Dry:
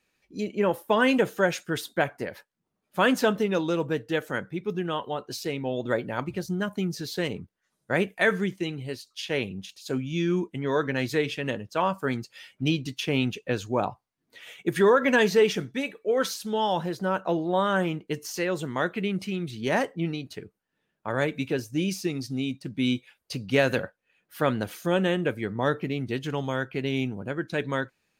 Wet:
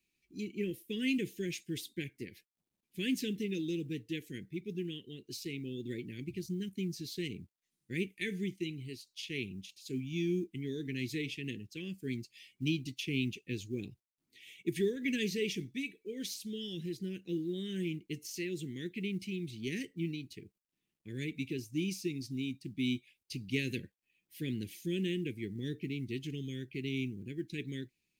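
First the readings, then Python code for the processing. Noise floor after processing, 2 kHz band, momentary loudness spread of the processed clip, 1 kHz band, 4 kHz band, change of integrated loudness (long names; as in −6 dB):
below −85 dBFS, −13.5 dB, 9 LU, below −40 dB, −8.0 dB, −11.0 dB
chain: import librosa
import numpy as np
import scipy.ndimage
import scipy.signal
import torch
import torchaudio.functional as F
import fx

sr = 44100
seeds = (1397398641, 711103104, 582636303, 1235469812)

y = scipy.signal.sosfilt(scipy.signal.ellip(3, 1.0, 40, [370.0, 2200.0], 'bandstop', fs=sr, output='sos'), x)
y = fx.quant_companded(y, sr, bits=8)
y = y * librosa.db_to_amplitude(-7.0)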